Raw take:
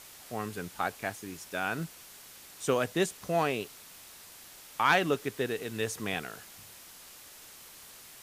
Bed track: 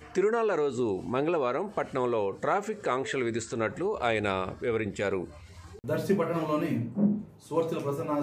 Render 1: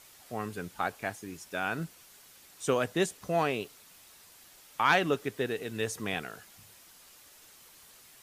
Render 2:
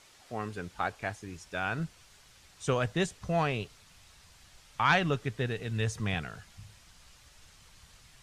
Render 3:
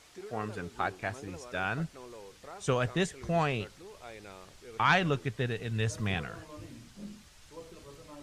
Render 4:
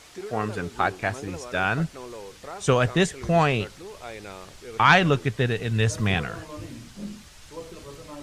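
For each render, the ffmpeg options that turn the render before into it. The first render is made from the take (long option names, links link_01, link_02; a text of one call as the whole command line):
ffmpeg -i in.wav -af "afftdn=noise_reduction=6:noise_floor=-51" out.wav
ffmpeg -i in.wav -af "lowpass=7000,asubboost=boost=9:cutoff=110" out.wav
ffmpeg -i in.wav -i bed.wav -filter_complex "[1:a]volume=-20dB[link_01];[0:a][link_01]amix=inputs=2:normalize=0" out.wav
ffmpeg -i in.wav -af "volume=8.5dB" out.wav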